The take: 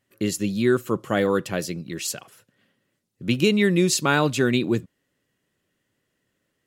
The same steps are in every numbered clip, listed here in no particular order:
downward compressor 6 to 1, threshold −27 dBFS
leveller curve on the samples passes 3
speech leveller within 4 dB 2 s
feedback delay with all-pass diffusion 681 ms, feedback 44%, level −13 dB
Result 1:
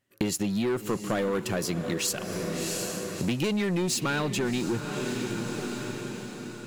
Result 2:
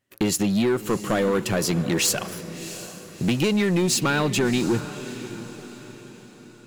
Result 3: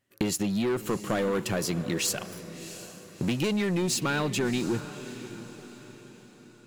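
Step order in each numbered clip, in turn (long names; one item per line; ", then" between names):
leveller curve on the samples, then speech leveller, then feedback delay with all-pass diffusion, then downward compressor
speech leveller, then downward compressor, then leveller curve on the samples, then feedback delay with all-pass diffusion
speech leveller, then leveller curve on the samples, then downward compressor, then feedback delay with all-pass diffusion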